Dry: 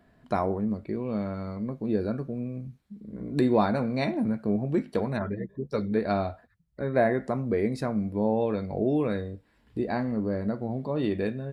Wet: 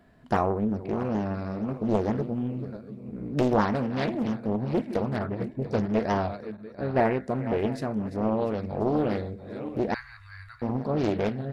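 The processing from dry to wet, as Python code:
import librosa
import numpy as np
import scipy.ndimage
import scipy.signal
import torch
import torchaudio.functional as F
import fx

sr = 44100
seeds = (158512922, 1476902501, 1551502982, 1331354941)

y = fx.reverse_delay_fb(x, sr, ms=346, feedback_pct=56, wet_db=-12.0)
y = fx.low_shelf(y, sr, hz=130.0, db=8.5, at=(5.39, 5.86))
y = fx.cheby2_bandstop(y, sr, low_hz=180.0, high_hz=550.0, order=4, stop_db=60, at=(9.94, 10.62))
y = fx.rider(y, sr, range_db=4, speed_s=2.0)
y = fx.doppler_dist(y, sr, depth_ms=0.78)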